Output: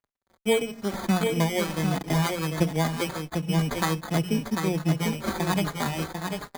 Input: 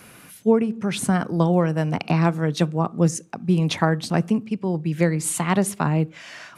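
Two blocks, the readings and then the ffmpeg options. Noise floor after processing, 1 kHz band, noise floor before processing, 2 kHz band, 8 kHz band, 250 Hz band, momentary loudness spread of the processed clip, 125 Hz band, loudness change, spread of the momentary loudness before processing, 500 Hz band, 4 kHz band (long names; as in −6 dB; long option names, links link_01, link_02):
−73 dBFS, −3.5 dB, −47 dBFS, −1.5 dB, −5.5 dB, −5.0 dB, 6 LU, −5.0 dB, −4.5 dB, 5 LU, −4.5 dB, +1.0 dB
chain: -filter_complex "[0:a]asplit=2[link_01][link_02];[link_02]asoftclip=type=hard:threshold=-13.5dB,volume=-7dB[link_03];[link_01][link_03]amix=inputs=2:normalize=0,acrusher=samples=16:mix=1:aa=0.000001,bandreject=frequency=60:width_type=h:width=6,bandreject=frequency=120:width_type=h:width=6,bandreject=frequency=180:width_type=h:width=6,aecho=1:1:746:0.562,aeval=exprs='sgn(val(0))*max(abs(val(0))-0.0168,0)':channel_layout=same,asplit=2[link_04][link_05];[link_05]adelay=4.4,afreqshift=-1.4[link_06];[link_04][link_06]amix=inputs=2:normalize=1,volume=-3.5dB"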